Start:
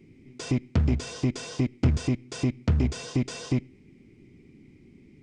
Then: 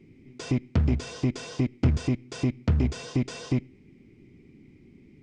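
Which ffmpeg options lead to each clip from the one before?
-af "highshelf=f=7600:g=-8.5"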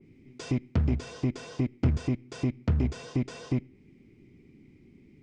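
-af "adynamicequalizer=threshold=0.00251:dfrequency=2400:dqfactor=0.7:tfrequency=2400:tqfactor=0.7:attack=5:release=100:ratio=0.375:range=2.5:mode=cutabove:tftype=highshelf,volume=0.75"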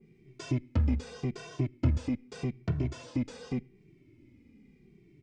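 -filter_complex "[0:a]asplit=2[s0][s1];[s1]adelay=2.1,afreqshift=-0.84[s2];[s0][s2]amix=inputs=2:normalize=1"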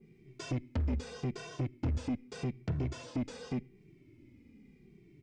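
-af "asoftclip=type=tanh:threshold=0.0422"

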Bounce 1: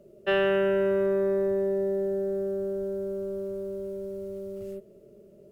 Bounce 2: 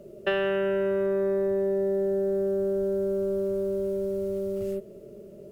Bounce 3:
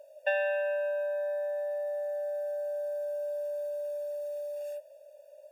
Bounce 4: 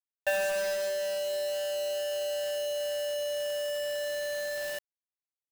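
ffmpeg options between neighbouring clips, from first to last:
-af "acompressor=threshold=0.0251:ratio=4,volume=2.37"
-af "afftfilt=real='re*eq(mod(floor(b*sr/1024/480),2),1)':imag='im*eq(mod(floor(b*sr/1024/480),2),1)':win_size=1024:overlap=0.75"
-af "acrusher=bits=5:mix=0:aa=0.000001"

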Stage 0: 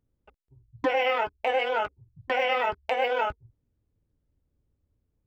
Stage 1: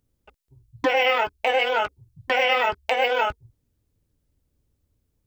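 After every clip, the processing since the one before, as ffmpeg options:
-af "highshelf=f=2800:g=9.5,volume=1.41"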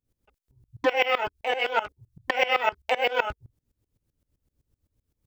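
-af "aeval=exprs='val(0)*pow(10,-20*if(lt(mod(-7.8*n/s,1),2*abs(-7.8)/1000),1-mod(-7.8*n/s,1)/(2*abs(-7.8)/1000),(mod(-7.8*n/s,1)-2*abs(-7.8)/1000)/(1-2*abs(-7.8)/1000))/20)':c=same,volume=1.41"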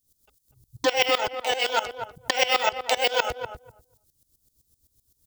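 -filter_complex "[0:a]aexciter=amount=6.4:drive=5.3:freq=3500,asplit=2[s0][s1];[s1]adelay=245,lowpass=f=910:p=1,volume=0.501,asplit=2[s2][s3];[s3]adelay=245,lowpass=f=910:p=1,volume=0.16,asplit=2[s4][s5];[s5]adelay=245,lowpass=f=910:p=1,volume=0.16[s6];[s2][s4][s6]amix=inputs=3:normalize=0[s7];[s0][s7]amix=inputs=2:normalize=0"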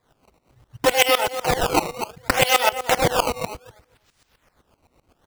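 -af "acrusher=samples=15:mix=1:aa=0.000001:lfo=1:lforange=24:lforate=0.66,volume=1.68"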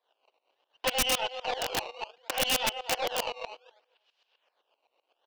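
-af "highpass=f=490:w=0.5412,highpass=f=490:w=1.3066,equalizer=f=1300:t=q:w=4:g=-7,equalizer=f=2000:t=q:w=4:g=-8,equalizer=f=2900:t=q:w=4:g=9,lowpass=f=4600:w=0.5412,lowpass=f=4600:w=1.3066,aeval=exprs='(tanh(2.51*val(0)+0.5)-tanh(0.5))/2.51':c=same,aeval=exprs='(mod(3.55*val(0)+1,2)-1)/3.55':c=same,volume=0.473"

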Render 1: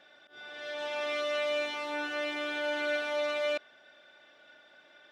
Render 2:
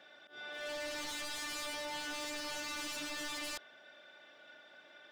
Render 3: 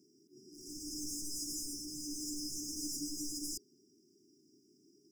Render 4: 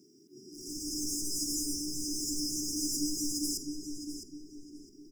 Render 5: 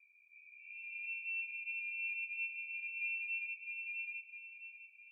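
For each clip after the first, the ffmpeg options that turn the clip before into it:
-af "highpass=f=99:w=0.5412,highpass=f=99:w=1.3066,aeval=exprs='0.015*(abs(mod(val(0)/0.015+3,4)-2)-1)':c=same"
-af "afftfilt=real='re*(1-between(b*sr/4096,430,4800))':imag='im*(1-between(b*sr/4096,430,4800))':win_size=4096:overlap=0.75,volume=2"
-filter_complex "[0:a]asplit=2[s0][s1];[s1]adelay=659,lowpass=f=2900:p=1,volume=0.631,asplit=2[s2][s3];[s3]adelay=659,lowpass=f=2900:p=1,volume=0.41,asplit=2[s4][s5];[s5]adelay=659,lowpass=f=2900:p=1,volume=0.41,asplit=2[s6][s7];[s7]adelay=659,lowpass=f=2900:p=1,volume=0.41,asplit=2[s8][s9];[s9]adelay=659,lowpass=f=2900:p=1,volume=0.41[s10];[s0][s2][s4][s6][s8][s10]amix=inputs=6:normalize=0,volume=2.11"
-af "flanger=delay=3:depth=3.2:regen=61:speed=0.49:shape=triangular,lowpass=f=2300:t=q:w=0.5098,lowpass=f=2300:t=q:w=0.6013,lowpass=f=2300:t=q:w=0.9,lowpass=f=2300:t=q:w=2.563,afreqshift=-2700,volume=0.794"

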